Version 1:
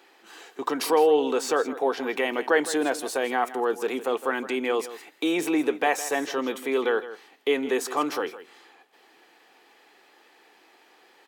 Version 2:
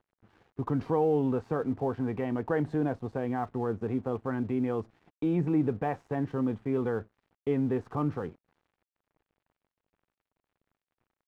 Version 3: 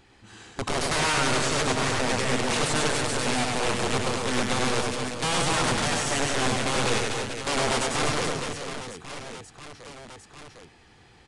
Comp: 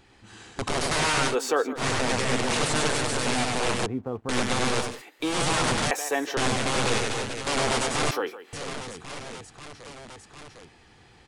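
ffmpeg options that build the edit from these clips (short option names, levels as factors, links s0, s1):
-filter_complex "[0:a]asplit=4[s0][s1][s2][s3];[2:a]asplit=6[s4][s5][s6][s7][s8][s9];[s4]atrim=end=1.36[s10];[s0]atrim=start=1.26:end=1.85[s11];[s5]atrim=start=1.75:end=3.862[s12];[1:a]atrim=start=3.858:end=4.292[s13];[s6]atrim=start=4.288:end=5.02[s14];[s1]atrim=start=4.78:end=5.43[s15];[s7]atrim=start=5.19:end=5.912[s16];[s2]atrim=start=5.908:end=6.372[s17];[s8]atrim=start=6.368:end=8.112[s18];[s3]atrim=start=8.108:end=8.532[s19];[s9]atrim=start=8.528[s20];[s10][s11]acrossfade=d=0.1:c1=tri:c2=tri[s21];[s21][s12]acrossfade=d=0.1:c1=tri:c2=tri[s22];[s22][s13]acrossfade=d=0.004:c1=hsin:c2=hsin[s23];[s23][s14]acrossfade=d=0.004:c1=hsin:c2=hsin[s24];[s24][s15]acrossfade=d=0.24:c1=tri:c2=tri[s25];[s25][s16]acrossfade=d=0.24:c1=tri:c2=tri[s26];[s26][s17]acrossfade=d=0.004:c1=hsin:c2=hsin[s27];[s27][s18]acrossfade=d=0.004:c1=hsin:c2=hsin[s28];[s28][s19]acrossfade=d=0.004:c1=hsin:c2=hsin[s29];[s29][s20]acrossfade=d=0.004:c1=hsin:c2=hsin"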